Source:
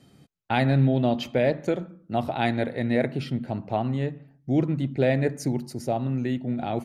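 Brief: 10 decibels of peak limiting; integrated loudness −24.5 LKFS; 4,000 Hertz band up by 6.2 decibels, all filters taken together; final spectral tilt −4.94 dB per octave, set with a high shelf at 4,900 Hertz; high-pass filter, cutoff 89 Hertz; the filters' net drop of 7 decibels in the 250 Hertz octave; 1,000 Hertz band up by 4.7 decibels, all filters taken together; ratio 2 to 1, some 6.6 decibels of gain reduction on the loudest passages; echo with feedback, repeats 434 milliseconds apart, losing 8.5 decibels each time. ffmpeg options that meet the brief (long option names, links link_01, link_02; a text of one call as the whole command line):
ffmpeg -i in.wav -af "highpass=89,equalizer=frequency=250:width_type=o:gain=-9,equalizer=frequency=1000:width_type=o:gain=8,equalizer=frequency=4000:width_type=o:gain=8.5,highshelf=frequency=4900:gain=-3,acompressor=threshold=-29dB:ratio=2,alimiter=limit=-22.5dB:level=0:latency=1,aecho=1:1:434|868|1302|1736:0.376|0.143|0.0543|0.0206,volume=9.5dB" out.wav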